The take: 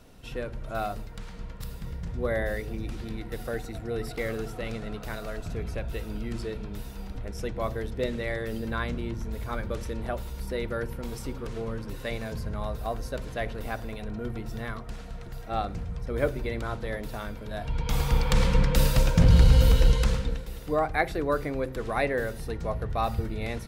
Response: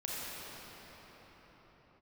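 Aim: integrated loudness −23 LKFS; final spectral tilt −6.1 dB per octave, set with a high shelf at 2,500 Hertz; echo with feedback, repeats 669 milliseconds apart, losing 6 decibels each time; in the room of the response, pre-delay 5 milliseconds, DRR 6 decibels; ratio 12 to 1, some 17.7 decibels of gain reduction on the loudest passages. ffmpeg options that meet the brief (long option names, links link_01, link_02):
-filter_complex "[0:a]highshelf=frequency=2500:gain=-3.5,acompressor=threshold=-31dB:ratio=12,aecho=1:1:669|1338|2007|2676|3345|4014:0.501|0.251|0.125|0.0626|0.0313|0.0157,asplit=2[link_01][link_02];[1:a]atrim=start_sample=2205,adelay=5[link_03];[link_02][link_03]afir=irnorm=-1:irlink=0,volume=-10.5dB[link_04];[link_01][link_04]amix=inputs=2:normalize=0,volume=12dB"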